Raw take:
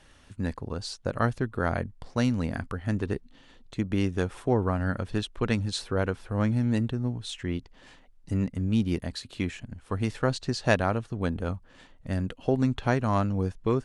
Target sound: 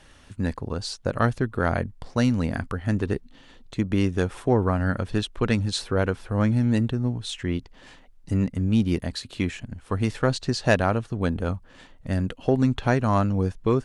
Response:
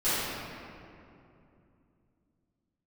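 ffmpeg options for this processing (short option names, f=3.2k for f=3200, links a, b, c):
-af "acontrast=85,volume=-3dB"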